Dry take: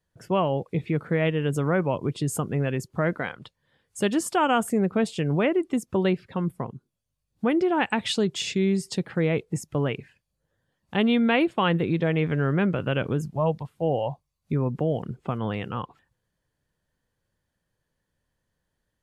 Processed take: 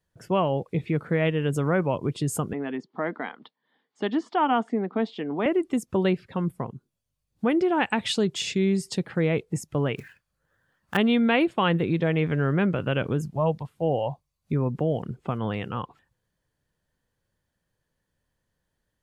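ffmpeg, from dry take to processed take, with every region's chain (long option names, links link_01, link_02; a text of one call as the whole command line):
ffmpeg -i in.wav -filter_complex "[0:a]asettb=1/sr,asplit=3[link_01][link_02][link_03];[link_01]atrim=end=2.534[link_04];[link_02]atrim=start=2.53:end=5.46,asetpts=PTS-STARTPTS,afade=type=in:duration=0.004:curve=qsin,afade=type=out:start_time=2.926:duration=0.004:curve=qsin,highpass=frequency=240:width=0.5412,highpass=frequency=240:width=1.3066,equalizer=frequency=250:width_type=q:width=4:gain=4,equalizer=frequency=370:width_type=q:width=4:gain=-4,equalizer=frequency=580:width_type=q:width=4:gain=-3,equalizer=frequency=830:width_type=q:width=4:gain=3,equalizer=frequency=1500:width_type=q:width=4:gain=-5,equalizer=frequency=2600:width_type=q:width=4:gain=-9,lowpass=frequency=3800:width=0.5412,lowpass=frequency=3800:width=1.3066,bandreject=frequency=530:width=6.2[link_05];[link_03]atrim=start=5.456[link_06];[link_04][link_05]acrossfade=duration=0.004:curve1=hsin:curve2=qsin[link_07];[link_07][link_06]acrossfade=duration=0.004:curve1=qsin:curve2=hsin,asettb=1/sr,asplit=3[link_08][link_09][link_10];[link_08]atrim=end=9.964[link_11];[link_09]atrim=start=9.96:end=10.97,asetpts=PTS-STARTPTS,afade=type=in:duration=0.004:curve=qsin,afade=type=out:start_time=1.006:duration=0.004:curve=qsin,equalizer=frequency=1400:width=1.5:gain=13,acrusher=bits=4:mode=log:mix=0:aa=0.000001[link_12];[link_10]atrim=start=10.966[link_13];[link_11][link_12]acrossfade=duration=0.004:curve1=hsin:curve2=qsin[link_14];[link_14][link_13]acrossfade=duration=0.004:curve1=qsin:curve2=hsin" out.wav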